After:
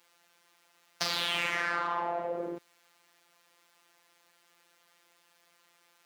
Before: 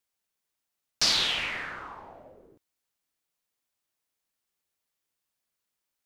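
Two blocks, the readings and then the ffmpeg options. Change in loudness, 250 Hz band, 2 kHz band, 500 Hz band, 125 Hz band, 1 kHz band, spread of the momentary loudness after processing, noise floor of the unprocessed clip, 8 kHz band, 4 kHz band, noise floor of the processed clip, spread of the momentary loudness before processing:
-6.0 dB, +4.5 dB, +1.0 dB, +9.0 dB, -0.5 dB, +7.0 dB, 9 LU, -85 dBFS, -9.0 dB, -7.0 dB, -68 dBFS, 19 LU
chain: -filter_complex "[0:a]asplit=2[a][b];[b]highpass=f=720:p=1,volume=34dB,asoftclip=type=tanh:threshold=-10.5dB[c];[a][c]amix=inputs=2:normalize=0,lowpass=f=1.5k:p=1,volume=-6dB,acompressor=threshold=-30dB:ratio=12,highpass=f=110:w=0.5412,highpass=f=110:w=1.3066,afftfilt=real='hypot(re,im)*cos(PI*b)':imag='0':win_size=1024:overlap=0.75,volume=4dB"

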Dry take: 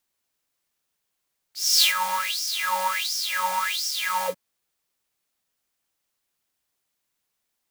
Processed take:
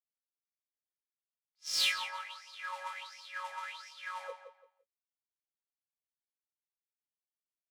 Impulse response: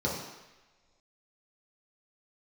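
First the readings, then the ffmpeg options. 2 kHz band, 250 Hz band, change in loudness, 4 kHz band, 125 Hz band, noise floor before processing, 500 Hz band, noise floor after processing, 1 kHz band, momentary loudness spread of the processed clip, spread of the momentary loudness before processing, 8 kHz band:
-11.5 dB, under -15 dB, -13.5 dB, -12.5 dB, n/a, -79 dBFS, -15.0 dB, under -85 dBFS, -16.0 dB, 16 LU, 9 LU, -17.5 dB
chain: -filter_complex "[0:a]lowpass=10k,agate=range=-33dB:threshold=-18dB:ratio=3:detection=peak,highpass=f=420:w=0.5412,highpass=f=420:w=1.3066,equalizer=f=5.8k:t=o:w=2:g=-10,acrossover=split=2100[a][b];[a]acompressor=threshold=-41dB:ratio=6[c];[b]asoftclip=type=tanh:threshold=-24dB[d];[c][d]amix=inputs=2:normalize=0,adynamicsmooth=sensitivity=7.5:basefreq=5.7k,asplit=2[e][f];[f]adelay=20,volume=-6.5dB[g];[e][g]amix=inputs=2:normalize=0,asplit=2[h][i];[i]adelay=170,lowpass=f=3.7k:p=1,volume=-9dB,asplit=2[j][k];[k]adelay=170,lowpass=f=3.7k:p=1,volume=0.28,asplit=2[l][m];[m]adelay=170,lowpass=f=3.7k:p=1,volume=0.28[n];[h][j][l][n]amix=inputs=4:normalize=0"

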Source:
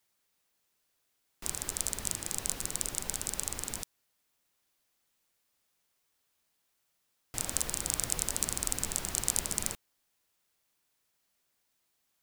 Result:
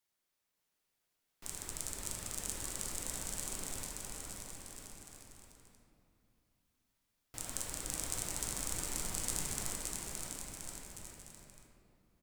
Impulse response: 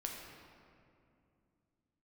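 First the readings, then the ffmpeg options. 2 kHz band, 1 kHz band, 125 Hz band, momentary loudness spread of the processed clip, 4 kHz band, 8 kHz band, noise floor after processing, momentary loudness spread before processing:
-4.0 dB, -3.5 dB, -2.5 dB, 15 LU, -5.0 dB, -6.0 dB, -84 dBFS, 8 LU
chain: -filter_complex "[0:a]aecho=1:1:570|1026|1391|1683|1916:0.631|0.398|0.251|0.158|0.1[a];[1:a]atrim=start_sample=2205,asetrate=41895,aresample=44100[b];[a][b]afir=irnorm=-1:irlink=0,volume=-6dB"

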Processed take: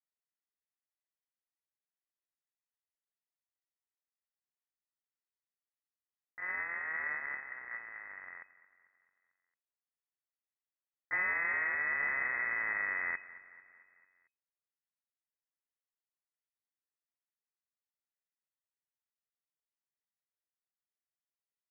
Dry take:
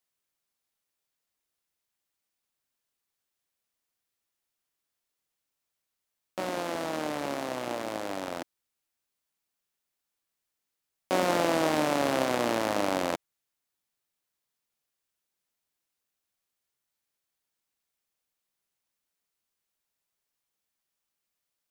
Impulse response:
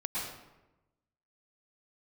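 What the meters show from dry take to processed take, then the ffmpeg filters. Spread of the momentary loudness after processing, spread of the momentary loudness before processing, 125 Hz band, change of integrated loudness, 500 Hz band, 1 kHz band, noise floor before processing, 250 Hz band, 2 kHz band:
16 LU, 11 LU, under -20 dB, -4.5 dB, -24.5 dB, -13.5 dB, -85 dBFS, -28.5 dB, +5.0 dB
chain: -filter_complex "[0:a]aeval=exprs='if(lt(val(0),0),0.251*val(0),val(0))':c=same,agate=range=-14dB:threshold=-32dB:ratio=16:detection=peak,lowshelf=f=380:t=q:w=3:g=-13.5,acrossover=split=170[a][b];[b]alimiter=limit=-19dB:level=0:latency=1:release=194[c];[a][c]amix=inputs=2:normalize=0,asoftclip=type=tanh:threshold=-27.5dB,afreqshift=250,asplit=2[d][e];[e]aecho=0:1:223|446|669|892|1115:0.126|0.0705|0.0395|0.0221|0.0124[f];[d][f]amix=inputs=2:normalize=0,lowpass=f=2.4k:t=q:w=0.5098,lowpass=f=2.4k:t=q:w=0.6013,lowpass=f=2.4k:t=q:w=0.9,lowpass=f=2.4k:t=q:w=2.563,afreqshift=-2800"

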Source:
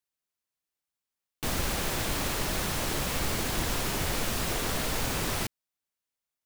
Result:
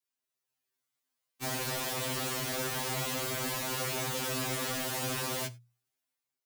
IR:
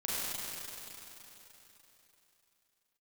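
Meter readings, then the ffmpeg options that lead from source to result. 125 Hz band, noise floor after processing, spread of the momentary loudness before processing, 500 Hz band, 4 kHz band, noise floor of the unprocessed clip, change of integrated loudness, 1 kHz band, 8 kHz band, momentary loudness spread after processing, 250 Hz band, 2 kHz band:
-5.0 dB, under -85 dBFS, 2 LU, -2.0 dB, -2.5 dB, under -85 dBFS, -3.0 dB, -3.0 dB, -2.5 dB, 2 LU, -5.0 dB, -3.0 dB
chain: -filter_complex "[0:a]highpass=91,bandreject=f=60:t=h:w=6,bandreject=f=120:t=h:w=6,bandreject=f=180:t=h:w=6,adynamicequalizer=threshold=0.00282:dfrequency=570:dqfactor=3.2:tfrequency=570:tqfactor=3.2:attack=5:release=100:ratio=0.375:range=1.5:mode=boostabove:tftype=bell,dynaudnorm=f=130:g=7:m=5dB,volume=31dB,asoftclip=hard,volume=-31dB,asplit=2[a][b];[1:a]atrim=start_sample=2205,atrim=end_sample=4410[c];[b][c]afir=irnorm=-1:irlink=0,volume=-20dB[d];[a][d]amix=inputs=2:normalize=0,afftfilt=real='re*2.45*eq(mod(b,6),0)':imag='im*2.45*eq(mod(b,6),0)':win_size=2048:overlap=0.75"

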